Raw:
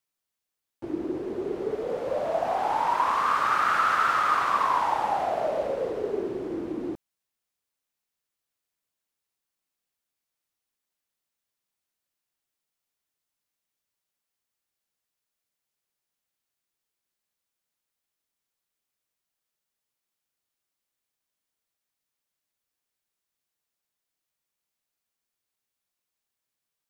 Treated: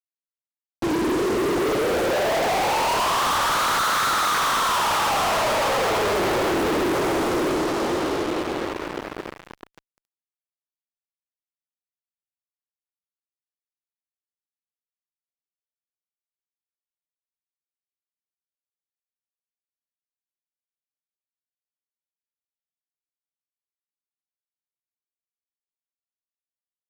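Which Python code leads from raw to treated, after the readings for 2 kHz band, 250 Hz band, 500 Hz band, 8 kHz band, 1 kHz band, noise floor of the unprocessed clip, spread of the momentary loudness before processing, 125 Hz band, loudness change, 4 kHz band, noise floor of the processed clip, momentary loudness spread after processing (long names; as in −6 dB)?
+7.0 dB, +10.0 dB, +7.0 dB, +19.0 dB, +3.0 dB, below −85 dBFS, 11 LU, +12.5 dB, +4.5 dB, +16.0 dB, below −85 dBFS, 8 LU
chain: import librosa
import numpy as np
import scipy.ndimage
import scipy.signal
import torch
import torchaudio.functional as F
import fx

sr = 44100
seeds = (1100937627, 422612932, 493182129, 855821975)

y = fx.echo_diffused(x, sr, ms=621, feedback_pct=52, wet_db=-5.0)
y = fx.fuzz(y, sr, gain_db=49.0, gate_db=-47.0)
y = F.gain(torch.from_numpy(y), -7.5).numpy()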